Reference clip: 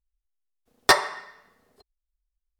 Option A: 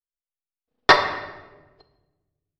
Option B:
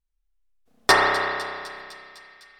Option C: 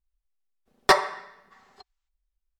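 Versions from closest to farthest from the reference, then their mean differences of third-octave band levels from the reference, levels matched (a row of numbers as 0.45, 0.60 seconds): C, A, B; 2.0, 7.0, 11.0 decibels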